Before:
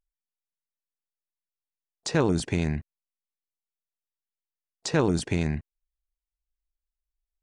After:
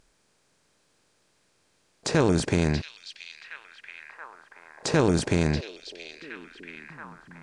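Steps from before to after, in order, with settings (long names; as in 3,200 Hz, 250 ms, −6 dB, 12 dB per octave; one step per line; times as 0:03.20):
compressor on every frequency bin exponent 0.6
echo through a band-pass that steps 679 ms, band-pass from 3,500 Hz, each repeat −0.7 octaves, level −4.5 dB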